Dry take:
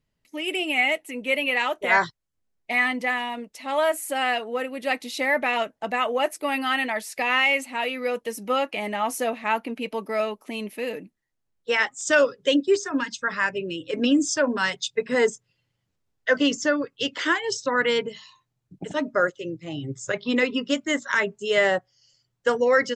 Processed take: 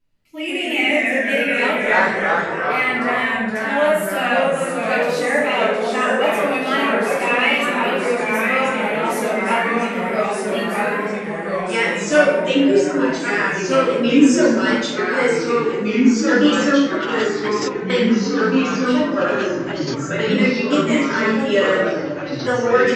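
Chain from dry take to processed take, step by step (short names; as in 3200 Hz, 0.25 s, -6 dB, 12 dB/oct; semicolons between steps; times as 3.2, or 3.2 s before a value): 10.27–10.79 tilt +1.5 dB/oct; on a send: delay with a stepping band-pass 0.267 s, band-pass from 440 Hz, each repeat 0.7 oct, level -8.5 dB; on the sum: wow and flutter 83 cents; shoebox room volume 220 m³, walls mixed, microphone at 2.9 m; 16.87–17.9 negative-ratio compressor -21 dBFS, ratio -0.5; echoes that change speed 99 ms, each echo -2 st, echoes 3; gain -6 dB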